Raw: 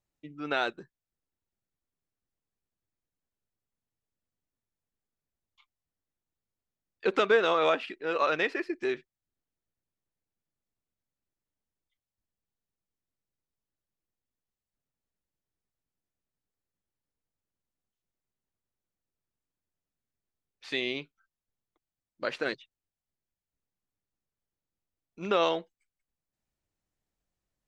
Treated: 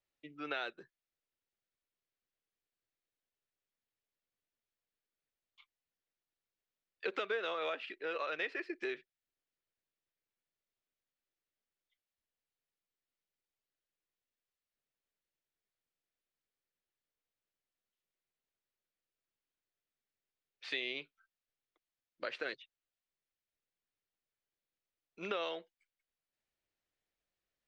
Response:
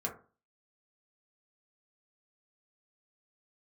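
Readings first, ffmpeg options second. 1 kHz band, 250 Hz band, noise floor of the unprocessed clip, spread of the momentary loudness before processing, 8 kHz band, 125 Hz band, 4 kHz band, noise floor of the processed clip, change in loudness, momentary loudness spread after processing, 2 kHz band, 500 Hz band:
-12.5 dB, -12.0 dB, under -85 dBFS, 13 LU, no reading, under -10 dB, -7.5 dB, under -85 dBFS, -10.5 dB, 11 LU, -8.0 dB, -12.0 dB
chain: -filter_complex "[0:a]acrossover=split=420 4600:gain=0.178 1 0.2[s0][s1][s2];[s0][s1][s2]amix=inputs=3:normalize=0,acompressor=threshold=0.0112:ratio=2.5,equalizer=f=910:w=1.2:g=-8,volume=1.41"

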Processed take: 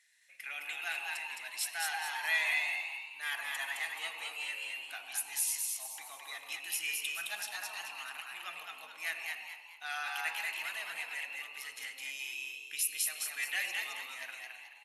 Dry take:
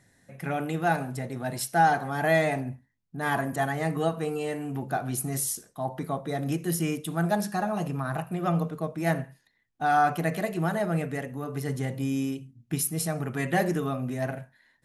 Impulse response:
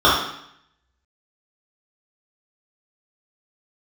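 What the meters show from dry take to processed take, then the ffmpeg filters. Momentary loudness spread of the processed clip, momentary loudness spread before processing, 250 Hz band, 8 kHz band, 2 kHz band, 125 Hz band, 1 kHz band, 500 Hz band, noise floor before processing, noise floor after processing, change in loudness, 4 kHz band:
11 LU, 10 LU, under -40 dB, -1.5 dB, -1.5 dB, under -40 dB, -17.0 dB, -26.5 dB, -70 dBFS, -53 dBFS, -7.5 dB, +3.5 dB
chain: -filter_complex "[0:a]highpass=f=2500:t=q:w=2.5,asplit=6[s0][s1][s2][s3][s4][s5];[s1]adelay=214,afreqshift=92,volume=0.708[s6];[s2]adelay=428,afreqshift=184,volume=0.275[s7];[s3]adelay=642,afreqshift=276,volume=0.107[s8];[s4]adelay=856,afreqshift=368,volume=0.0422[s9];[s5]adelay=1070,afreqshift=460,volume=0.0164[s10];[s0][s6][s7][s8][s9][s10]amix=inputs=6:normalize=0,asplit=2[s11][s12];[1:a]atrim=start_sample=2205,asetrate=33957,aresample=44100,adelay=94[s13];[s12][s13]afir=irnorm=-1:irlink=0,volume=0.0266[s14];[s11][s14]amix=inputs=2:normalize=0,volume=0.631"

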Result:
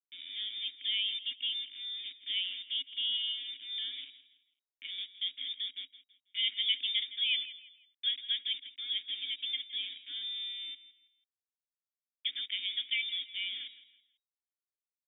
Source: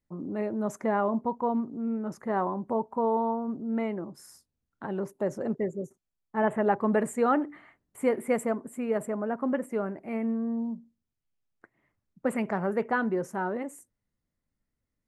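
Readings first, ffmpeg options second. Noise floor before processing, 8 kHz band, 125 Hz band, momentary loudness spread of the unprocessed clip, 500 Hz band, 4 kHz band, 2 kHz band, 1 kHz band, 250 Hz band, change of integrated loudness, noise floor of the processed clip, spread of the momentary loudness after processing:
-84 dBFS, under -30 dB, under -40 dB, 10 LU, under -40 dB, no reading, -3.5 dB, under -40 dB, under -40 dB, -4.0 dB, under -85 dBFS, 11 LU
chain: -filter_complex "[0:a]highpass=89,aeval=exprs='val(0)*gte(abs(val(0)),0.0168)':c=same,lowpass=f=3200:t=q:w=0.5098,lowpass=f=3200:t=q:w=0.6013,lowpass=f=3200:t=q:w=0.9,lowpass=f=3200:t=q:w=2.563,afreqshift=-3800,asplit=3[s0][s1][s2];[s0]bandpass=f=270:t=q:w=8,volume=1[s3];[s1]bandpass=f=2290:t=q:w=8,volume=0.501[s4];[s2]bandpass=f=3010:t=q:w=8,volume=0.355[s5];[s3][s4][s5]amix=inputs=3:normalize=0,asplit=2[s6][s7];[s7]aecho=0:1:164|328|492:0.168|0.0571|0.0194[s8];[s6][s8]amix=inputs=2:normalize=0,volume=1.58"

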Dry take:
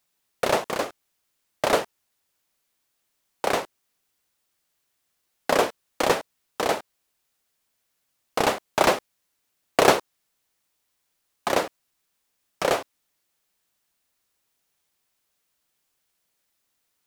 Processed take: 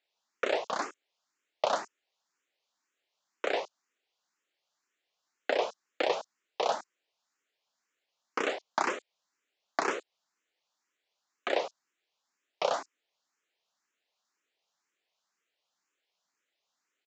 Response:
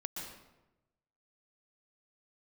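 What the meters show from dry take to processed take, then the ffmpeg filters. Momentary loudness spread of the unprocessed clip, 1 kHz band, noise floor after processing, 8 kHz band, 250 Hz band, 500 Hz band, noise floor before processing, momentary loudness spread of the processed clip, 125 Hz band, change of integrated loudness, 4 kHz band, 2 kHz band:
13 LU, -8.0 dB, -85 dBFS, -13.0 dB, -12.0 dB, -8.0 dB, -76 dBFS, 9 LU, under -20 dB, -8.5 dB, -8.5 dB, -7.5 dB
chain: -filter_complex "[0:a]acompressor=threshold=0.0891:ratio=6,aresample=16000,aresample=44100,highpass=330,acrossover=split=5700[s0][s1];[s1]adelay=30[s2];[s0][s2]amix=inputs=2:normalize=0,asplit=2[s3][s4];[s4]afreqshift=2[s5];[s3][s5]amix=inputs=2:normalize=1"

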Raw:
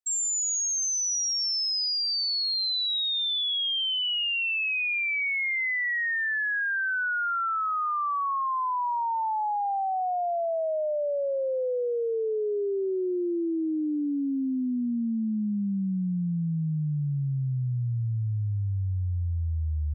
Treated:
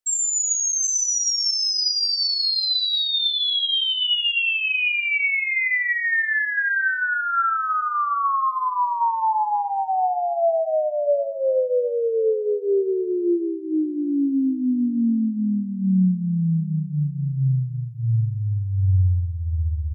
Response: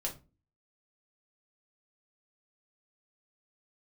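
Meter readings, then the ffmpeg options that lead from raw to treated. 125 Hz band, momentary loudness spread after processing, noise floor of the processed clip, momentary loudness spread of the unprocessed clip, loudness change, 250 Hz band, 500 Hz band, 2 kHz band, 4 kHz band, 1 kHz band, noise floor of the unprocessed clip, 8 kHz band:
+6.0 dB, 5 LU, -29 dBFS, 5 LU, +5.5 dB, +6.0 dB, +6.5 dB, +5.5 dB, +5.5 dB, +5.5 dB, -28 dBFS, no reading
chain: -filter_complex "[0:a]aecho=1:1:43|86|765:0.126|0.168|0.188,asplit=2[s0][s1];[1:a]atrim=start_sample=2205,afade=t=out:st=0.19:d=0.01,atrim=end_sample=8820[s2];[s1][s2]afir=irnorm=-1:irlink=0,volume=0.841[s3];[s0][s3]amix=inputs=2:normalize=0"

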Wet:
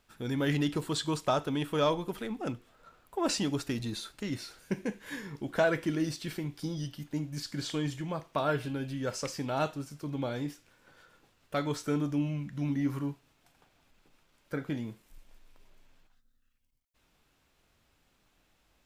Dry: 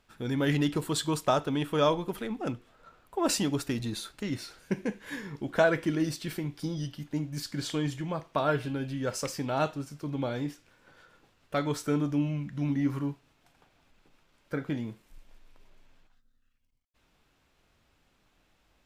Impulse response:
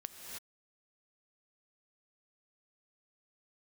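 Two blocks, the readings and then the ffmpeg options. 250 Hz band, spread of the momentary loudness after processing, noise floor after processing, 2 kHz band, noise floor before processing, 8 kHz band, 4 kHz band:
-2.0 dB, 10 LU, -71 dBFS, -2.5 dB, -70 dBFS, -3.5 dB, -1.5 dB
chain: -filter_complex "[0:a]acrossover=split=6900[s0][s1];[s1]acompressor=threshold=0.00178:ratio=4:attack=1:release=60[s2];[s0][s2]amix=inputs=2:normalize=0,highshelf=f=6700:g=6.5,asplit=2[s3][s4];[s4]aeval=exprs='0.251*sin(PI/2*1.41*val(0)/0.251)':c=same,volume=0.398[s5];[s3][s5]amix=inputs=2:normalize=0,volume=0.422"

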